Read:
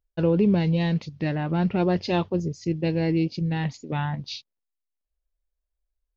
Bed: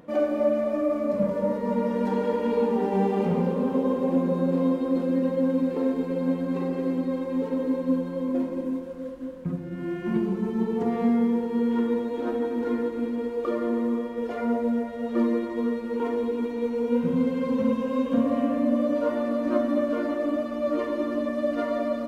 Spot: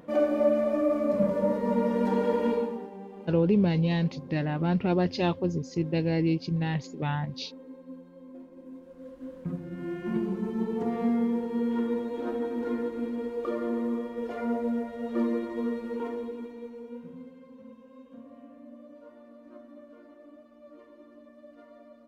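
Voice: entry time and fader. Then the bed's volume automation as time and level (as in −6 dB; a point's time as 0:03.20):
3.10 s, −2.5 dB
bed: 0:02.49 −0.5 dB
0:02.97 −20 dB
0:08.50 −20 dB
0:09.36 −4 dB
0:15.87 −4 dB
0:17.49 −25 dB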